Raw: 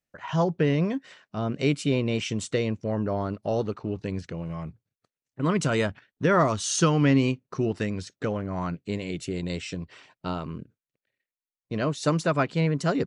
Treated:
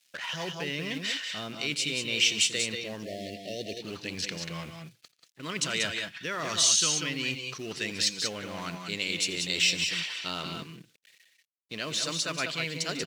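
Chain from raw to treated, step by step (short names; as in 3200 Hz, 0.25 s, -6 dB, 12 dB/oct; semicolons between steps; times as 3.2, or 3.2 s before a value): G.711 law mismatch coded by mu; reverse; compressor 6:1, threshold -32 dBFS, peak gain reduction 15.5 dB; reverse; weighting filter D; on a send: tapped delay 85/146/185/191 ms -19.5/-19/-7.5/-9 dB; on the sum: spectral delete 3.05–3.82, 760–1700 Hz; high shelf 2200 Hz +10.5 dB; gain -2.5 dB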